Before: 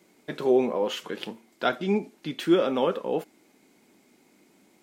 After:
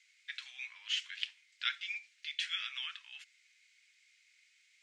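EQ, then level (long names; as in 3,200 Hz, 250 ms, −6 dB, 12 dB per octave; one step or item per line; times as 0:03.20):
Butterworth high-pass 2,000 Hz 36 dB per octave
low-pass filter 7,500 Hz 24 dB per octave
high-shelf EQ 2,600 Hz −10.5 dB
+7.0 dB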